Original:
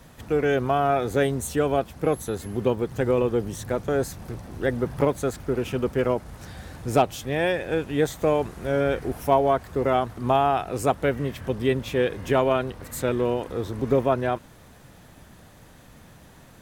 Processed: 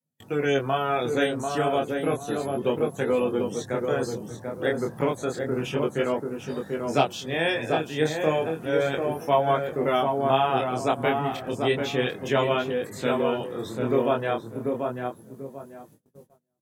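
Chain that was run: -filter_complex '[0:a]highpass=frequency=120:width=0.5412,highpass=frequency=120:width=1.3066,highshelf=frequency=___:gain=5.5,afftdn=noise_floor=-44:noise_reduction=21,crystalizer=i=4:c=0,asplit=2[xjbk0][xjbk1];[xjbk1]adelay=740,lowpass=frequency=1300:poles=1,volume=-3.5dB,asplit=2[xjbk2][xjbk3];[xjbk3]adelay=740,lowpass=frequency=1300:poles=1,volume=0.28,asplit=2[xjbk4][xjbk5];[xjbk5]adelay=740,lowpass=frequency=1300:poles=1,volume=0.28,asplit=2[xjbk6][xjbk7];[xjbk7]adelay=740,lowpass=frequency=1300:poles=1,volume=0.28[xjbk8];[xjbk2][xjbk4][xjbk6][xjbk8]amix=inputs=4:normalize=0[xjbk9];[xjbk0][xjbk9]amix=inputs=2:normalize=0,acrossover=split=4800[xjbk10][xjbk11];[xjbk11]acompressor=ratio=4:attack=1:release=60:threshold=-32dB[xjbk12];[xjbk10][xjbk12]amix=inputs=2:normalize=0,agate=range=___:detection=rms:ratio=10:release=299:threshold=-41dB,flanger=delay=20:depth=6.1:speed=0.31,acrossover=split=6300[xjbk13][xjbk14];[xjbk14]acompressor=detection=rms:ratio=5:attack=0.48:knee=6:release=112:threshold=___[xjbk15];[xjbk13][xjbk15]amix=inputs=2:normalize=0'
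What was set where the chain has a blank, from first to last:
6100, -29dB, -52dB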